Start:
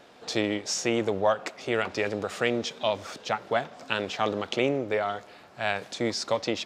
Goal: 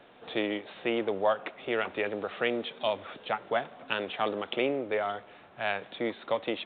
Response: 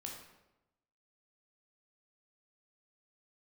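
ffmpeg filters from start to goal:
-filter_complex "[0:a]acrossover=split=200[link_01][link_02];[link_01]acompressor=threshold=-51dB:ratio=6[link_03];[link_03][link_02]amix=inputs=2:normalize=0,volume=-2.5dB" -ar 8000 -c:a pcm_alaw

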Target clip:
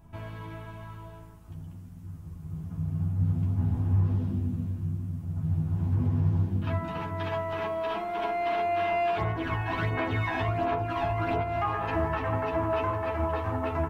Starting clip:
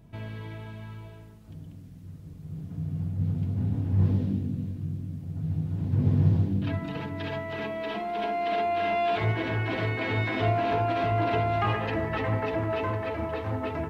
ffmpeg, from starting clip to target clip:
ffmpeg -i in.wav -filter_complex "[0:a]asplit=3[link_01][link_02][link_03];[link_01]afade=type=out:start_time=9.17:duration=0.02[link_04];[link_02]aphaser=in_gain=1:out_gain=1:delay=1.2:decay=0.55:speed=1.4:type=sinusoidal,afade=type=in:start_time=9.17:duration=0.02,afade=type=out:start_time=11.42:duration=0.02[link_05];[link_03]afade=type=in:start_time=11.42:duration=0.02[link_06];[link_04][link_05][link_06]amix=inputs=3:normalize=0,equalizer=frequency=125:width_type=o:width=1:gain=-10,equalizer=frequency=250:width_type=o:width=1:gain=-6,equalizer=frequency=500:width_type=o:width=1:gain=-11,equalizer=frequency=1000:width_type=o:width=1:gain=3,equalizer=frequency=2000:width_type=o:width=1:gain=-6,equalizer=frequency=4000:width_type=o:width=1:gain=-9,alimiter=level_in=2dB:limit=-24dB:level=0:latency=1:release=328,volume=-2dB,highshelf=frequency=4000:gain=-5.5,asplit=2[link_07][link_08];[link_08]adelay=12,volume=-3.5dB[link_09];[link_07][link_09]amix=inputs=2:normalize=0,volume=6.5dB" out.wav

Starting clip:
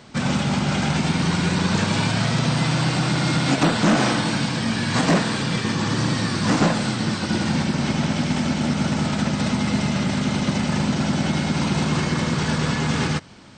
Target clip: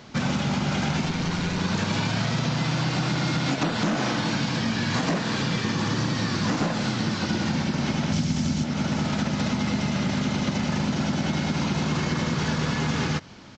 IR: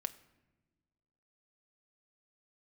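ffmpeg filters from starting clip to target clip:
-filter_complex "[0:a]asettb=1/sr,asplit=3[link_01][link_02][link_03];[link_01]atrim=end=8.124[link_04];[link_02]atrim=start=8.12:end=8.64,asetpts=PTS-STARTPTS,afade=type=in:duration=0.004:curve=qsin,afade=type=out:start_time=0.516:duration=0.004:curve=qsin,bass=frequency=250:gain=11,treble=frequency=4000:gain=12[link_05];[link_03]atrim=start=8.636[link_06];[link_04][link_05]acrossfade=duration=0.004:curve1=hsin:curve2=qsin[link_07];[link_07][link_06]acrossfade=duration=0.004:curve1=qsin:curve2=hsin,acompressor=threshold=-21dB:ratio=10,asettb=1/sr,asplit=3[link_08][link_09][link_10];[link_08]atrim=end=1.054[link_11];[link_09]atrim=start=1.05:end=1.61,asetpts=PTS-STARTPTS,afade=type=in:duration=0.004:curve=qsin,afade=type=out:start_time=0.556:duration=0.004:curve=qsin,aeval=exprs='clip(val(0),-1,0.0531)':channel_layout=same[link_12];[link_10]atrim=start=1.606[link_13];[link_11][link_12]acrossfade=duration=0.004:curve1=hsin:curve2=qsin[link_14];[link_14][link_13]acrossfade=duration=0.004:curve1=qsin:curve2=hsin,aresample=16000,aresample=44100"

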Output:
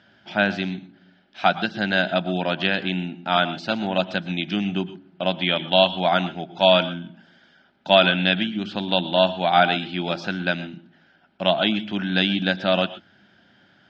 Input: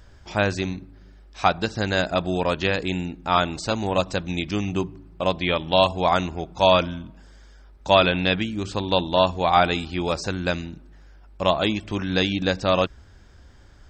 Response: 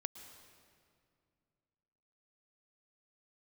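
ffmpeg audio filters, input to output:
-filter_complex "[0:a]highpass=frequency=150:width=0.5412,highpass=frequency=150:width=1.3066,equalizer=frequency=200:width_type=q:width=4:gain=6,equalizer=frequency=460:width_type=q:width=4:gain=-9,equalizer=frequency=680:width_type=q:width=4:gain=5,equalizer=frequency=1100:width_type=q:width=4:gain=-10,equalizer=frequency=1500:width_type=q:width=4:gain=8,equalizer=frequency=3100:width_type=q:width=4:gain=8,lowpass=frequency=4500:width=0.5412,lowpass=frequency=4500:width=1.3066[link_01];[1:a]atrim=start_sample=2205,atrim=end_sample=6174[link_02];[link_01][link_02]afir=irnorm=-1:irlink=0,volume=2dB"

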